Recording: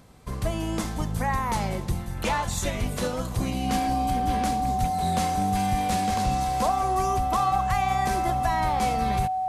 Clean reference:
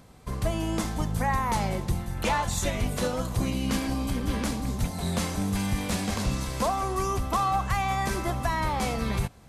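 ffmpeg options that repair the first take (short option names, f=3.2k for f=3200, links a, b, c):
-af "bandreject=f=750:w=30"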